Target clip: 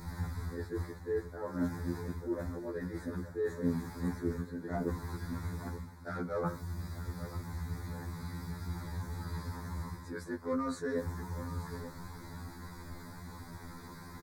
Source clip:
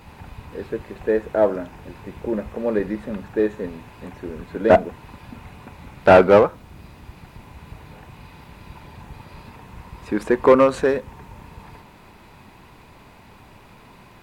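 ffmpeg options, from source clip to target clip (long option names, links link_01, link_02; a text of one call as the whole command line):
ffmpeg -i in.wav -filter_complex "[0:a]areverse,acompressor=threshold=-31dB:ratio=12,areverse,asuperstop=centerf=2800:order=4:qfactor=1.2,equalizer=frequency=640:width_type=o:width=1.6:gain=-10,asplit=2[link_01][link_02];[link_02]aecho=0:1:884:0.2[link_03];[link_01][link_03]amix=inputs=2:normalize=0,acompressor=mode=upward:threshold=-57dB:ratio=2.5,afftfilt=real='re*2*eq(mod(b,4),0)':imag='im*2*eq(mod(b,4),0)':win_size=2048:overlap=0.75,volume=6dB" out.wav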